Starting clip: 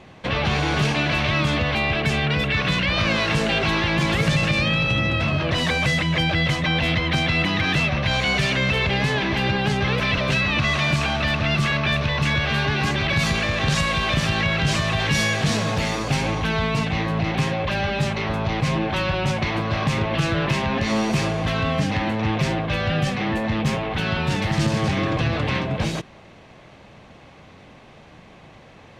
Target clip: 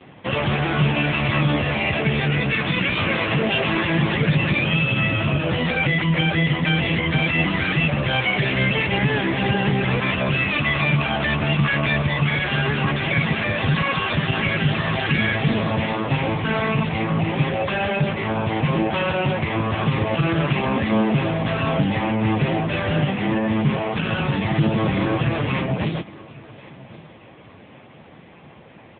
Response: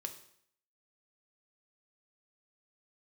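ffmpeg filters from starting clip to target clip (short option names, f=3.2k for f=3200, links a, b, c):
-af "aecho=1:1:1098|2196:0.0891|0.025,volume=4dB" -ar 8000 -c:a libopencore_amrnb -b:a 6700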